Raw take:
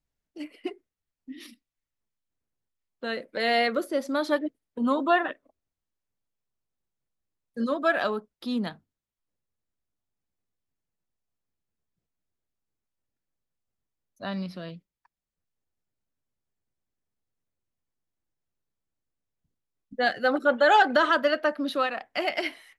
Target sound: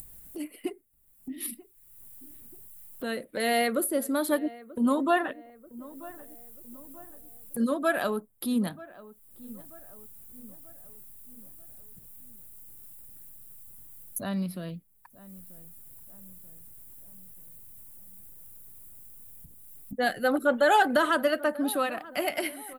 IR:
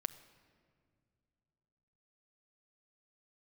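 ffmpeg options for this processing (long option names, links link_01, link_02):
-filter_complex "[0:a]lowshelf=frequency=310:gain=8.5,acompressor=mode=upward:threshold=-30dB:ratio=2.5,aexciter=amount=8.3:drive=8.6:freq=8300,asplit=2[link_01][link_02];[link_02]adelay=936,lowpass=frequency=1400:poles=1,volume=-18.5dB,asplit=2[link_03][link_04];[link_04]adelay=936,lowpass=frequency=1400:poles=1,volume=0.53,asplit=2[link_05][link_06];[link_06]adelay=936,lowpass=frequency=1400:poles=1,volume=0.53,asplit=2[link_07][link_08];[link_08]adelay=936,lowpass=frequency=1400:poles=1,volume=0.53[link_09];[link_03][link_05][link_07][link_09]amix=inputs=4:normalize=0[link_10];[link_01][link_10]amix=inputs=2:normalize=0,volume=-3.5dB"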